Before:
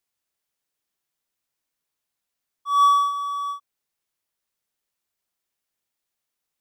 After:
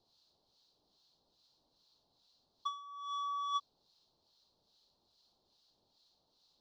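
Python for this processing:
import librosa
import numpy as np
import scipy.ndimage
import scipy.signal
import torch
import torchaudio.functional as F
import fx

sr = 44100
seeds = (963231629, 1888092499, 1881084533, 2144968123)

y = fx.curve_eq(x, sr, hz=(890.0, 2100.0, 4200.0, 8700.0), db=(0, -26, 8, -26))
y = fx.over_compress(y, sr, threshold_db=-43.0, ratio=-1.0)
y = fx.harmonic_tremolo(y, sr, hz=2.4, depth_pct=70, crossover_hz=1200.0)
y = y * librosa.db_to_amplitude(5.0)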